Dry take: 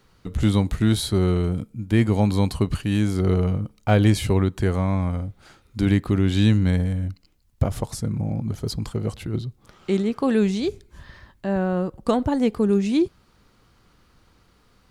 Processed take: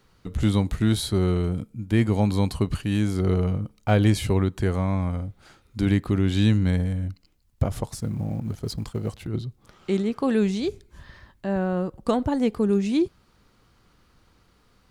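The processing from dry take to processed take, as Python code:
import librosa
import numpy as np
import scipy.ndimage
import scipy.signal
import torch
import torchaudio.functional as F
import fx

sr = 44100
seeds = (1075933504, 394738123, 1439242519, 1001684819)

y = fx.law_mismatch(x, sr, coded='A', at=(7.89, 9.27))
y = F.gain(torch.from_numpy(y), -2.0).numpy()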